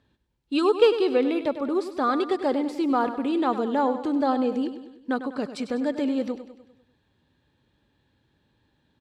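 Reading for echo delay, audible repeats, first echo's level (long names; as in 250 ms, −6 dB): 99 ms, 5, −11.5 dB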